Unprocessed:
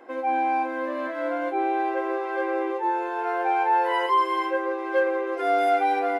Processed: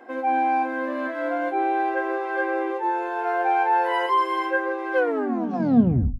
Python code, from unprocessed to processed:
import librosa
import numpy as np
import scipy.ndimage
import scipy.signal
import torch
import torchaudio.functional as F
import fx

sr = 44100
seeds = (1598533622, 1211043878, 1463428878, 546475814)

y = fx.tape_stop_end(x, sr, length_s=1.25)
y = fx.hum_notches(y, sr, base_hz=50, count=5)
y = fx.small_body(y, sr, hz=(240.0, 730.0, 1600.0), ring_ms=90, db=11)